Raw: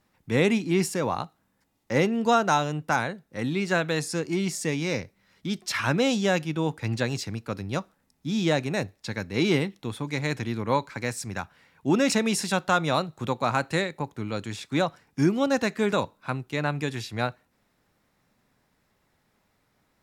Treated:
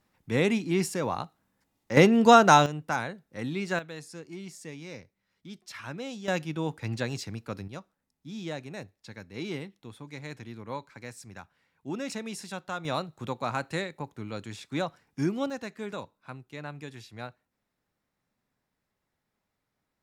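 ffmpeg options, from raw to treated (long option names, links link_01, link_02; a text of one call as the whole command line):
ffmpeg -i in.wav -af "asetnsamples=nb_out_samples=441:pad=0,asendcmd='1.97 volume volume 5dB;2.66 volume volume -5dB;3.79 volume volume -14.5dB;6.28 volume volume -4.5dB;7.68 volume volume -12.5dB;12.85 volume volume -6dB;15.5 volume volume -12.5dB',volume=-3dB" out.wav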